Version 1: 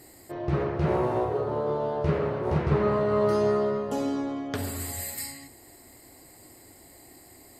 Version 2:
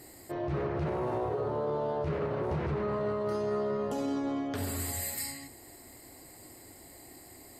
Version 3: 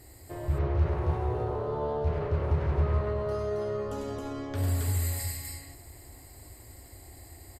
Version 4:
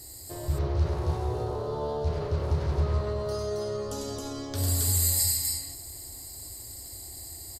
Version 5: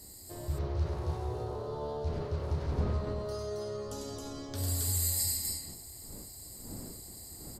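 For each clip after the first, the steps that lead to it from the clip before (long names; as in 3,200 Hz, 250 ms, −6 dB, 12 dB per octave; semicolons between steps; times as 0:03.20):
brickwall limiter −24.5 dBFS, peak gain reduction 11.5 dB
low shelf with overshoot 120 Hz +13 dB, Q 1.5; loudspeakers that aren't time-aligned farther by 34 metres −5 dB, 93 metres −2 dB; level −3.5 dB
high shelf with overshoot 3,300 Hz +11.5 dB, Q 1.5
wind on the microphone 270 Hz −42 dBFS; level −6 dB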